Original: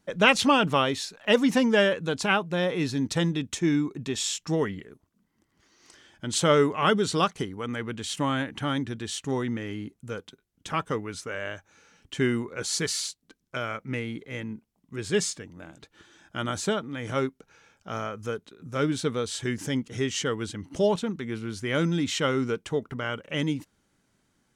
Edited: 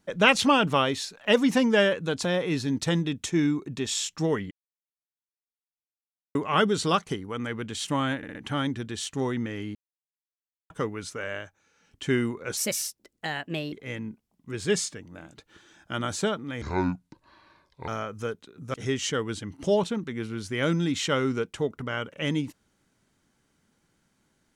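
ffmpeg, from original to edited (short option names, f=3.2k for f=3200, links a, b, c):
-filter_complex "[0:a]asplit=16[a][b][c][d][e][f][g][h][i][j][k][l][m][n][o][p];[a]atrim=end=2.252[q];[b]atrim=start=2.538:end=4.8,asetpts=PTS-STARTPTS,afade=t=out:st=2.258:d=0.004:c=hsin[r];[c]atrim=start=4.8:end=6.64,asetpts=PTS-STARTPTS,volume=0[s];[d]atrim=start=6.64:end=8.522,asetpts=PTS-STARTPTS,afade=t=in:d=0.004:c=hsin[t];[e]atrim=start=8.458:end=8.522[u];[f]atrim=start=8.458:end=8.522[v];[g]atrim=start=8.458:end=9.86,asetpts=PTS-STARTPTS,afade=t=out:st=1.398:d=0.004:c=hsin[w];[h]atrim=start=9.86:end=10.81,asetpts=PTS-STARTPTS,volume=0[x];[i]atrim=start=10.81:end=11.73,asetpts=PTS-STARTPTS,afade=t=in:d=0.004:c=hsin,afade=t=out:st=0.62:d=0.3:silence=0.354813[y];[j]atrim=start=11.73:end=11.85,asetpts=PTS-STARTPTS,volume=-9dB[z];[k]atrim=start=11.85:end=12.684,asetpts=PTS-STARTPTS,afade=t=in:d=0.3:silence=0.354813[aa];[l]atrim=start=12.68:end=14.17,asetpts=PTS-STARTPTS,asetrate=56889,aresample=44100,atrim=end_sample=50937,asetpts=PTS-STARTPTS[ab];[m]atrim=start=14.166:end=17.064[ac];[n]atrim=start=17.06:end=17.92,asetpts=PTS-STARTPTS,asetrate=29988,aresample=44100[ad];[o]atrim=start=17.916:end=18.782[ae];[p]atrim=start=19.858[af];[r][s][t]concat=n=3:v=0:a=1[ag];[q][ag]acrossfade=d=0.004:c1=hsin:c2=hsin[ah];[ah][u]acrossfade=d=0.004:c1=hsin:c2=hsin[ai];[ai][v]acrossfade=d=0.004:c1=hsin:c2=hsin[aj];[w][x][y][z][aa]concat=n=5:v=0:a=1[ak];[aj][ak]acrossfade=d=0.004:c1=hsin:c2=hsin[al];[al][ab]acrossfade=d=0.004:c1=hsin:c2=hsin[am];[am][ac]acrossfade=d=0.004:c1=hsin:c2=hsin[an];[an][ad]acrossfade=d=0.004:c1=hsin:c2=hsin[ao];[ao][ae]acrossfade=d=0.004:c1=hsin:c2=hsin[ap];[ap][af]acrossfade=d=0.004:c1=hsin:c2=hsin"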